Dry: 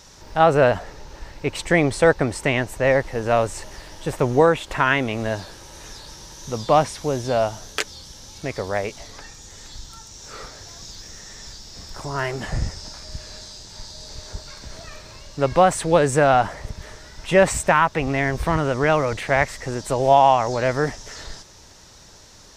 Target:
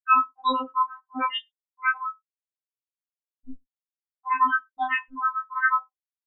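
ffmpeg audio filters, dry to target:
ffmpeg -i in.wav -filter_complex "[0:a]lowpass=2900,bandreject=frequency=50:width_type=h:width=6,bandreject=frequency=100:width_type=h:width=6,bandreject=frequency=150:width_type=h:width=6,bandreject=frequency=200:width_type=h:width=6,bandreject=frequency=250:width_type=h:width=6,bandreject=frequency=300:width_type=h:width=6,bandreject=frequency=350:width_type=h:width=6,bandreject=frequency=400:width_type=h:width=6,afftfilt=real='re*gte(hypot(re,im),0.794)':imag='im*gte(hypot(re,im),0.794)':win_size=1024:overlap=0.75,alimiter=limit=-10.5dB:level=0:latency=1:release=22,atempo=1.8,asplit=2[link_01][link_02];[link_02]adelay=45,volume=-4dB[link_03];[link_01][link_03]amix=inputs=2:normalize=0,asplit=2[link_04][link_05];[link_05]aecho=0:1:65|130|195:0.0794|0.031|0.0121[link_06];[link_04][link_06]amix=inputs=2:normalize=0,asetrate=88200,aresample=44100,afftfilt=real='re*3.46*eq(mod(b,12),0)':imag='im*3.46*eq(mod(b,12),0)':win_size=2048:overlap=0.75" out.wav

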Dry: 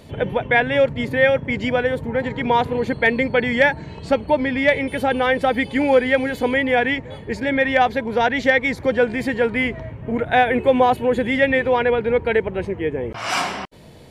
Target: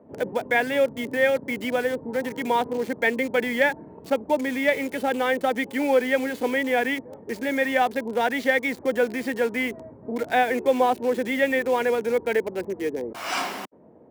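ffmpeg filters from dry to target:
ffmpeg -i in.wav -filter_complex "[0:a]lowshelf=frequency=180:width_type=q:width=1.5:gain=-9.5,acrossover=split=300|1200[link_01][link_02][link_03];[link_01]alimiter=limit=-23.5dB:level=0:latency=1[link_04];[link_03]acrusher=bits=5:mix=0:aa=0.000001[link_05];[link_04][link_02][link_05]amix=inputs=3:normalize=0,highpass=85,volume=-5.5dB" out.wav

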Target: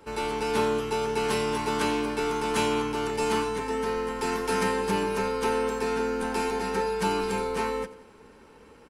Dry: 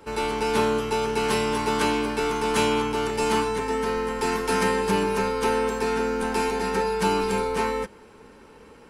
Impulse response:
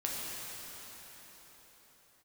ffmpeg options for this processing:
-af "aecho=1:1:88|176|264|352:0.158|0.0682|0.0293|0.0126,volume=-3.5dB"

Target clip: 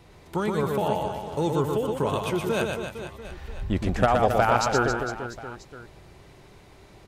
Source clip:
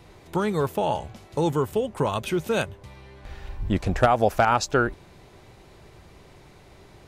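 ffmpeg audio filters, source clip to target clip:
ffmpeg -i in.wav -af "aecho=1:1:120|270|457.5|691.9|984.8:0.631|0.398|0.251|0.158|0.1,volume=-2.5dB" out.wav

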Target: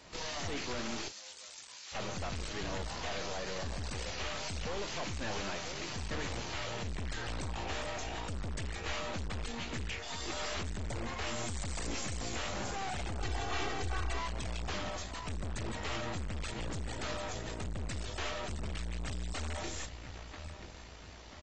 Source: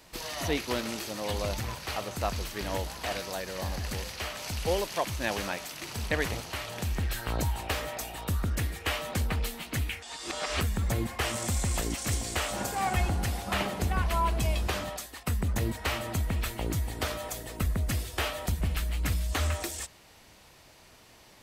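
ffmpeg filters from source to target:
ffmpeg -i in.wav -filter_complex "[0:a]asettb=1/sr,asplit=3[link_01][link_02][link_03];[link_01]atrim=end=11.374[link_04];[link_02]atrim=start=11.37:end=12.06,asetpts=PTS-STARTPTS,afade=type=in:duration=0.004:curve=qsin,afade=type=out:start_time=0.686:duration=0.004:curve=qsin,acontrast=63[link_05];[link_03]atrim=start=12.056[link_06];[link_04][link_05]acrossfade=duration=0.004:curve1=hsin:curve2=qsin[link_07];[link_07][link_06]acrossfade=duration=0.004:curve1=qsin:curve2=hsin,asplit=2[link_08][link_09];[link_09]adelay=986,lowpass=frequency=3300:poles=1,volume=-19.5dB,asplit=2[link_10][link_11];[link_11]adelay=986,lowpass=frequency=3300:poles=1,volume=0.49,asplit=2[link_12][link_13];[link_13]adelay=986,lowpass=frequency=3300:poles=1,volume=0.49,asplit=2[link_14][link_15];[link_15]adelay=986,lowpass=frequency=3300:poles=1,volume=0.49[link_16];[link_08][link_10][link_12][link_14][link_16]amix=inputs=5:normalize=0,aeval=exprs='(tanh(126*val(0)+0.75)-tanh(0.75))/126':channel_layout=same,asettb=1/sr,asplit=3[link_17][link_18][link_19];[link_17]atrim=end=1.084[link_20];[link_18]atrim=start=1.08:end=1.95,asetpts=PTS-STARTPTS,afade=type=in:duration=0.004:curve=qsin,afade=type=out:start_time=0.866:duration=0.004:curve=qsin,aderivative[link_21];[link_19]atrim=start=1.946[link_22];[link_20][link_21]acrossfade=duration=0.004:curve1=hsin:curve2=qsin[link_23];[link_23][link_22]acrossfade=duration=0.004:curve1=qsin:curve2=hsin,asettb=1/sr,asplit=3[link_24][link_25][link_26];[link_24]atrim=end=13.204[link_27];[link_25]atrim=start=13.2:end=14.19,asetpts=PTS-STARTPTS,afade=type=in:duration=0.004:curve=qsin,afade=type=out:start_time=0.986:duration=0.004:curve=qsin,aecho=1:1:2.6:0.79,atrim=end_sample=43659[link_28];[link_26]atrim=start=14.186[link_29];[link_27][link_28]acrossfade=duration=0.004:curve1=hsin:curve2=qsin[link_30];[link_30][link_29]acrossfade=duration=0.004:curve1=qsin:curve2=hsin,volume=4.5dB" -ar 24000 -c:a aac -b:a 24k out.aac

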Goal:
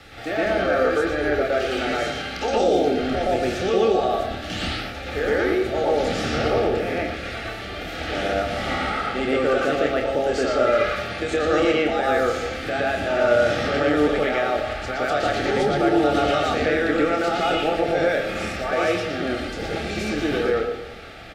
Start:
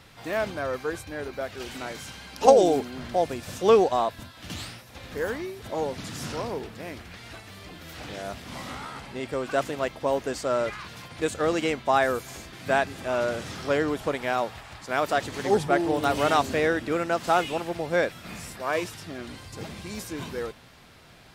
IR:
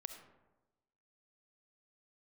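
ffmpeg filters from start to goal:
-filter_complex "[0:a]aemphasis=mode=reproduction:type=cd,acrossover=split=7300[link_01][link_02];[link_02]acompressor=threshold=-60dB:ratio=4:attack=1:release=60[link_03];[link_01][link_03]amix=inputs=2:normalize=0,equalizer=frequency=140:width=1.1:gain=-9.5,acrossover=split=200|3000[link_04][link_05][link_06];[link_05]acompressor=threshold=-26dB:ratio=6[link_07];[link_04][link_07][link_06]amix=inputs=3:normalize=0,alimiter=level_in=1dB:limit=-24dB:level=0:latency=1:release=55,volume=-1dB,asuperstop=centerf=1000:order=20:qfactor=4.6,asplit=2[link_08][link_09];[link_09]adelay=27,volume=-6.5dB[link_10];[link_08][link_10]amix=inputs=2:normalize=0,asplit=2[link_11][link_12];[1:a]atrim=start_sample=2205,lowpass=4200,adelay=117[link_13];[link_12][link_13]afir=irnorm=-1:irlink=0,volume=8dB[link_14];[link_11][link_14]amix=inputs=2:normalize=0,volume=8dB"

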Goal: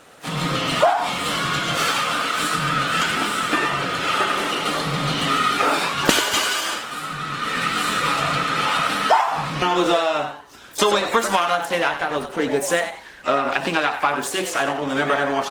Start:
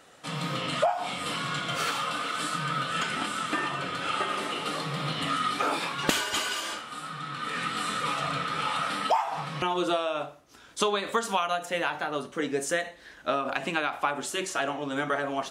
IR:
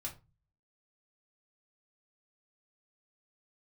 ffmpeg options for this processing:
-filter_complex "[0:a]asplit=3[link_01][link_02][link_03];[link_02]asetrate=66075,aresample=44100,atempo=0.66742,volume=-14dB[link_04];[link_03]asetrate=88200,aresample=44100,atempo=0.5,volume=-15dB[link_05];[link_01][link_04][link_05]amix=inputs=3:normalize=0,asplit=4[link_06][link_07][link_08][link_09];[link_07]adelay=93,afreqshift=140,volume=-9.5dB[link_10];[link_08]adelay=186,afreqshift=280,volume=-20dB[link_11];[link_09]adelay=279,afreqshift=420,volume=-30.4dB[link_12];[link_06][link_10][link_11][link_12]amix=inputs=4:normalize=0,volume=8dB" -ar 48000 -c:a libopus -b:a 20k

